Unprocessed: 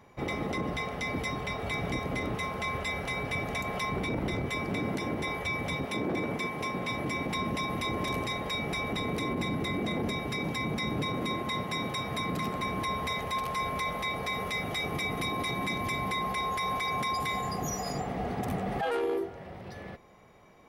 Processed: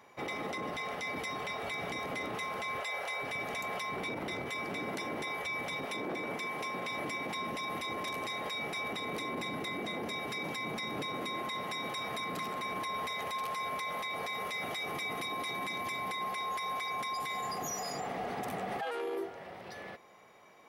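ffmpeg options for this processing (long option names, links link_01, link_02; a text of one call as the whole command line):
ffmpeg -i in.wav -filter_complex "[0:a]asettb=1/sr,asplit=3[link_01][link_02][link_03];[link_01]atrim=end=2.804[link_04];[link_02]atrim=start=2.8:end=3.22,asetpts=PTS-STARTPTS,afade=type=in:duration=0.004:curve=qsin,afade=type=out:start_time=0.416:duration=0.004:curve=qsin,lowshelf=frequency=380:width_type=q:width=1.5:gain=-10.5[link_05];[link_03]atrim=start=3.216[link_06];[link_04][link_05]acrossfade=duration=0.004:curve1=hsin:curve2=qsin[link_07];[link_07][link_06]acrossfade=duration=0.004:curve1=qsin:curve2=hsin,highpass=frequency=610:poles=1,alimiter=level_in=7dB:limit=-24dB:level=0:latency=1:release=28,volume=-7dB,volume=2dB" out.wav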